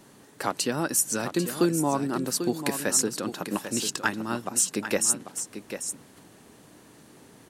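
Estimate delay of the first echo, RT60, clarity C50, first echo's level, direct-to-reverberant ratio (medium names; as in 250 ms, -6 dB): 793 ms, no reverb, no reverb, -9.5 dB, no reverb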